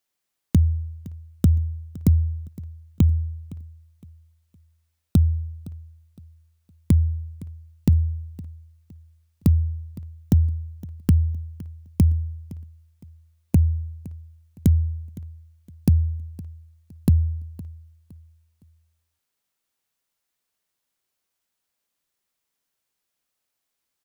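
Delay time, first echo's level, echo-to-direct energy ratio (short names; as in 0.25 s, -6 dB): 0.513 s, -19.5 dB, -19.0 dB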